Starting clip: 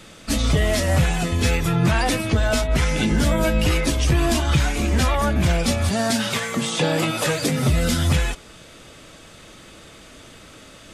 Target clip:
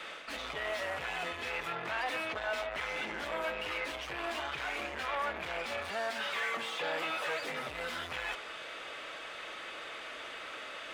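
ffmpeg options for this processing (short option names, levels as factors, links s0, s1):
-filter_complex "[0:a]tiltshelf=f=1300:g=-4.5,areverse,acompressor=threshold=0.0447:ratio=6,areverse,asoftclip=type=tanh:threshold=0.02,acrossover=split=410 3000:gain=0.0708 1 0.0794[s0][s1][s2];[s0][s1][s2]amix=inputs=3:normalize=0,volume=2"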